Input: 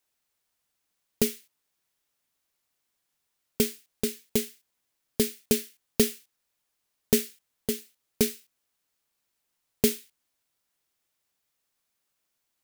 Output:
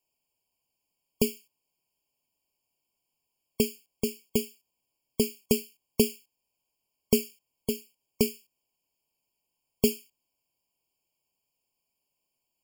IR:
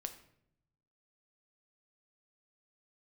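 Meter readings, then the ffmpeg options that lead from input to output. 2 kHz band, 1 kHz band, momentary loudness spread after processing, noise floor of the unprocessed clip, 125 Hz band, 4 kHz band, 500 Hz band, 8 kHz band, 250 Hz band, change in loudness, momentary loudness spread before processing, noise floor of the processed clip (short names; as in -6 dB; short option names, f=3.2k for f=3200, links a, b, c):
-2.5 dB, -1.0 dB, 15 LU, -80 dBFS, 0.0 dB, -2.5 dB, 0.0 dB, -4.0 dB, 0.0 dB, -1.5 dB, 14 LU, -83 dBFS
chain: -af "afftfilt=real='re*eq(mod(floor(b*sr/1024/1100),2),0)':imag='im*eq(mod(floor(b*sr/1024/1100),2),0)':win_size=1024:overlap=0.75"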